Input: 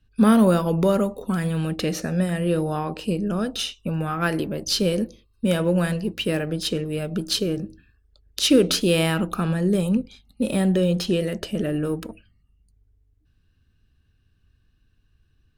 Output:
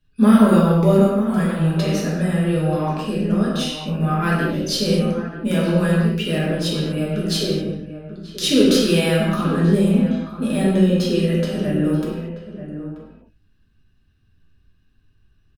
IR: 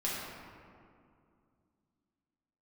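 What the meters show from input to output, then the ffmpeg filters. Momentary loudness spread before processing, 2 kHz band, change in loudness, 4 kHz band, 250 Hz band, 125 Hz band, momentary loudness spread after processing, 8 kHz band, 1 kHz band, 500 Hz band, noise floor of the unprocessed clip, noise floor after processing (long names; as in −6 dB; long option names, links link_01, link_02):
10 LU, +3.5 dB, +4.0 dB, +1.5 dB, +5.0 dB, +6.0 dB, 14 LU, +0.5 dB, +3.5 dB, +3.0 dB, −64 dBFS, −59 dBFS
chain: -filter_complex "[0:a]asplit=2[link_01][link_02];[link_02]adelay=932.9,volume=-11dB,highshelf=frequency=4000:gain=-21[link_03];[link_01][link_03]amix=inputs=2:normalize=0[link_04];[1:a]atrim=start_sample=2205,afade=type=out:start_time=0.3:duration=0.01,atrim=end_sample=13671[link_05];[link_04][link_05]afir=irnorm=-1:irlink=0,volume=-2dB"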